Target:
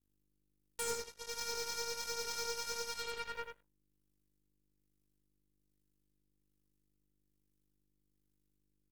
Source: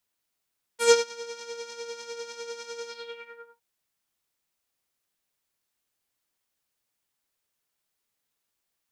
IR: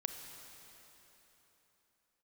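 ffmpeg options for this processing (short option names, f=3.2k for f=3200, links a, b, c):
-filter_complex "[0:a]tremolo=f=1.2:d=0.41,acrossover=split=160[a][b];[b]acompressor=threshold=-41dB:ratio=12[c];[a][c]amix=inputs=2:normalize=0,aemphasis=mode=production:type=cd,flanger=delay=8.9:depth=6.3:regen=-78:speed=1.4:shape=sinusoidal,aeval=exprs='val(0)+0.000562*(sin(2*PI*50*n/s)+sin(2*PI*2*50*n/s)/2+sin(2*PI*3*50*n/s)/3+sin(2*PI*4*50*n/s)/4+sin(2*PI*5*50*n/s)/5)':c=same,aeval=exprs='0.0126*(cos(1*acos(clip(val(0)/0.0126,-1,1)))-cos(1*PI/2))+0.002*(cos(4*acos(clip(val(0)/0.0126,-1,1)))-cos(4*PI/2))+0.00178*(cos(7*acos(clip(val(0)/0.0126,-1,1)))-cos(7*PI/2))':c=same,asplit=2[d][e];[e]aecho=0:1:86:0.531[f];[d][f]amix=inputs=2:normalize=0,volume=7dB"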